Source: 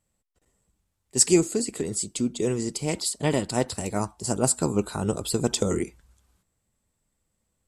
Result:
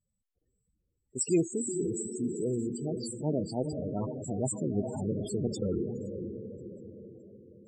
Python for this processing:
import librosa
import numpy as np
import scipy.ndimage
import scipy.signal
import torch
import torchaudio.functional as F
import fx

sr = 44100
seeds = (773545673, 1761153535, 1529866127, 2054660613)

y = fx.echo_diffused(x, sr, ms=479, feedback_pct=51, wet_db=-6.5)
y = fx.transient(y, sr, attack_db=-4, sustain_db=3)
y = fx.spec_topn(y, sr, count=16)
y = y * 10.0 ** (-5.0 / 20.0)